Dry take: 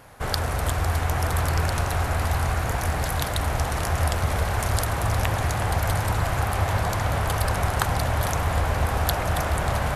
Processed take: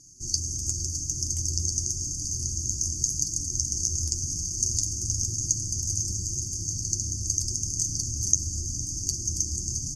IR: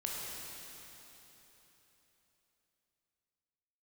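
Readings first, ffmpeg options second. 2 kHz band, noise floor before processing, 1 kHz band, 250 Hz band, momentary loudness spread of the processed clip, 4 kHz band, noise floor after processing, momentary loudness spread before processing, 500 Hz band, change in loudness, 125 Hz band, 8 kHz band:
below −40 dB, −27 dBFS, below −40 dB, −9.0 dB, 4 LU, −1.5 dB, −34 dBFS, 2 LU, −24.5 dB, −2.0 dB, −9.5 dB, +11.5 dB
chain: -filter_complex "[0:a]afftfilt=real='re*(1-between(b*sr/4096,380,4500))':imag='im*(1-between(b*sr/4096,380,4500))':win_size=4096:overlap=0.75,highshelf=frequency=2200:gain=7.5,bandreject=frequency=50:width_type=h:width=6,bandreject=frequency=100:width_type=h:width=6,bandreject=frequency=150:width_type=h:width=6,bandreject=frequency=200:width_type=h:width=6,bandreject=frequency=250:width_type=h:width=6,acontrast=77,lowpass=frequency=6400:width_type=q:width=15,flanger=delay=6.6:depth=3.8:regen=-39:speed=0.89:shape=sinusoidal,asplit=2[link_01][link_02];[link_02]aecho=0:1:460:0.141[link_03];[link_01][link_03]amix=inputs=2:normalize=0,volume=-11.5dB"

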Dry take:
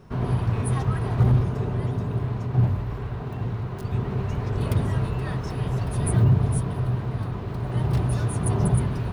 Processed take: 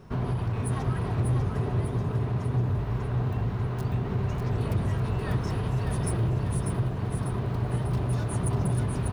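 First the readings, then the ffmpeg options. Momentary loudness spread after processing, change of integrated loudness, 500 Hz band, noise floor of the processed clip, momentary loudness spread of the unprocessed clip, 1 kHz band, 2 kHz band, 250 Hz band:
3 LU, −3.5 dB, −2.0 dB, −32 dBFS, 9 LU, −2.0 dB, −2.0 dB, −3.0 dB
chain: -af "asoftclip=type=hard:threshold=-18.5dB,acompressor=threshold=-25dB:ratio=6,aecho=1:1:595|1190|1785|2380|2975|3570:0.562|0.276|0.135|0.0662|0.0324|0.0159"

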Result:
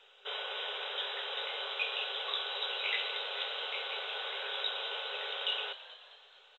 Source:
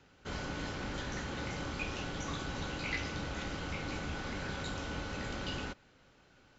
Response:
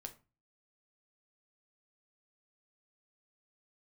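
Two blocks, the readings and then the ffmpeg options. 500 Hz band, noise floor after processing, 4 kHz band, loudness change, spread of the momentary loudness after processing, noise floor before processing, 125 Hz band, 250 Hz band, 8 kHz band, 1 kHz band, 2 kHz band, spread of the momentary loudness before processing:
+0.5 dB, −61 dBFS, +11.0 dB, +4.0 dB, 6 LU, −64 dBFS, below −40 dB, below −25 dB, can't be measured, +1.0 dB, +2.5 dB, 3 LU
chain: -filter_complex "[0:a]afftfilt=real='re*between(b*sr/4096,390,3900)':imag='im*between(b*sr/4096,390,3900)':win_size=4096:overlap=0.75,acontrast=47,aexciter=amount=7.1:drive=1.6:freq=2900,asplit=6[link_01][link_02][link_03][link_04][link_05][link_06];[link_02]adelay=215,afreqshift=88,volume=-14.5dB[link_07];[link_03]adelay=430,afreqshift=176,volume=-20.7dB[link_08];[link_04]adelay=645,afreqshift=264,volume=-26.9dB[link_09];[link_05]adelay=860,afreqshift=352,volume=-33.1dB[link_10];[link_06]adelay=1075,afreqshift=440,volume=-39.3dB[link_11];[link_01][link_07][link_08][link_09][link_10][link_11]amix=inputs=6:normalize=0,volume=-5dB" -ar 16000 -c:a pcm_mulaw

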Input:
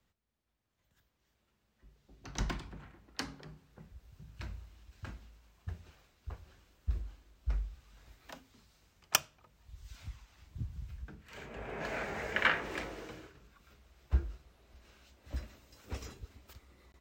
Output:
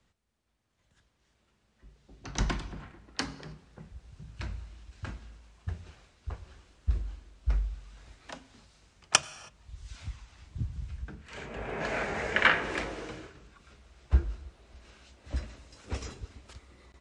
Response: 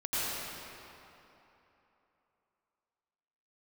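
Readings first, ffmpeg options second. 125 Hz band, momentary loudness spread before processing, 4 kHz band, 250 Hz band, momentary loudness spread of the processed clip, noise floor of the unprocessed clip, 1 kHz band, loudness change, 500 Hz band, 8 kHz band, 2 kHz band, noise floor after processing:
+6.0 dB, 25 LU, +6.0 dB, +6.0 dB, 23 LU, −79 dBFS, +6.0 dB, +5.5 dB, +6.0 dB, +6.0 dB, +6.0 dB, −73 dBFS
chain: -filter_complex "[0:a]asplit=2[link_01][link_02];[1:a]atrim=start_sample=2205,afade=type=out:start_time=0.38:duration=0.01,atrim=end_sample=17199[link_03];[link_02][link_03]afir=irnorm=-1:irlink=0,volume=-25.5dB[link_04];[link_01][link_04]amix=inputs=2:normalize=0,aresample=22050,aresample=44100,volume=5.5dB"

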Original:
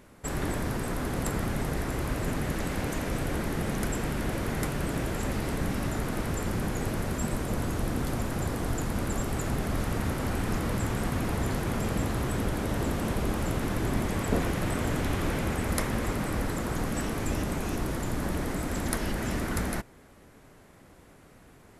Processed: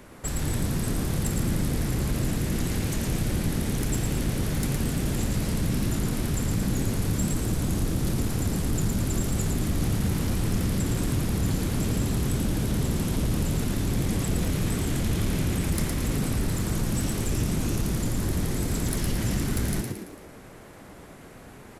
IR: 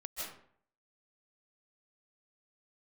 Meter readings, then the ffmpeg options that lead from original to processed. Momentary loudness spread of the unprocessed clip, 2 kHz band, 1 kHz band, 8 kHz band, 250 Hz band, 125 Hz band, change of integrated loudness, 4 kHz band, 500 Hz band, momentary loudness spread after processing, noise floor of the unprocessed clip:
2 LU, −2.5 dB, −4.5 dB, +6.0 dB, +3.5 dB, +5.5 dB, +3.5 dB, +4.0 dB, −1.0 dB, 2 LU, −54 dBFS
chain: -filter_complex "[0:a]asplit=2[link_01][link_02];[link_02]alimiter=limit=-21dB:level=0:latency=1,volume=1dB[link_03];[link_01][link_03]amix=inputs=2:normalize=0,acrossover=split=190|3000[link_04][link_05][link_06];[link_05]acompressor=threshold=-43dB:ratio=2.5[link_07];[link_04][link_07][link_06]amix=inputs=3:normalize=0,asoftclip=type=tanh:threshold=-19dB,asplit=7[link_08][link_09][link_10][link_11][link_12][link_13][link_14];[link_09]adelay=112,afreqshift=86,volume=-4.5dB[link_15];[link_10]adelay=224,afreqshift=172,volume=-11.1dB[link_16];[link_11]adelay=336,afreqshift=258,volume=-17.6dB[link_17];[link_12]adelay=448,afreqshift=344,volume=-24.2dB[link_18];[link_13]adelay=560,afreqshift=430,volume=-30.7dB[link_19];[link_14]adelay=672,afreqshift=516,volume=-37.3dB[link_20];[link_08][link_15][link_16][link_17][link_18][link_19][link_20]amix=inputs=7:normalize=0"

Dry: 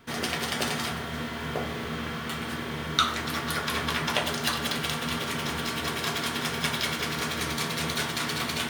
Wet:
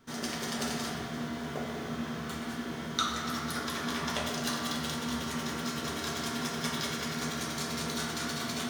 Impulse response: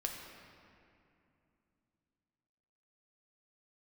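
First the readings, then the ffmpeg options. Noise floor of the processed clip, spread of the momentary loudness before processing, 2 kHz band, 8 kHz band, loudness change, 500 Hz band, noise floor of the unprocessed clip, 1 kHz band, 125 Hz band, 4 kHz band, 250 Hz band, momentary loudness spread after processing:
−39 dBFS, 6 LU, −7.5 dB, −2.5 dB, −5.0 dB, −4.5 dB, −34 dBFS, −5.5 dB, −5.0 dB, −6.5 dB, −1.0 dB, 5 LU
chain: -filter_complex "[0:a]equalizer=frequency=250:width_type=o:width=0.67:gain=4,equalizer=frequency=2500:width_type=o:width=0.67:gain=-5,equalizer=frequency=6300:width_type=o:width=0.67:gain=6[link_01];[1:a]atrim=start_sample=2205,asetrate=48510,aresample=44100[link_02];[link_01][link_02]afir=irnorm=-1:irlink=0,volume=-5.5dB"

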